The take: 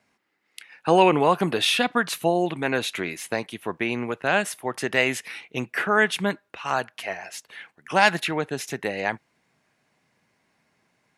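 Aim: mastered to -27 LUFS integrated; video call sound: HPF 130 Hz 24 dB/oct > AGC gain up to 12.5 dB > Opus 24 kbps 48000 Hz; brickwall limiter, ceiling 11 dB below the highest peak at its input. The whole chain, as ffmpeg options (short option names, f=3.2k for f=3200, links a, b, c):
-af "alimiter=limit=-14.5dB:level=0:latency=1,highpass=f=130:w=0.5412,highpass=f=130:w=1.3066,dynaudnorm=m=12.5dB,volume=1.5dB" -ar 48000 -c:a libopus -b:a 24k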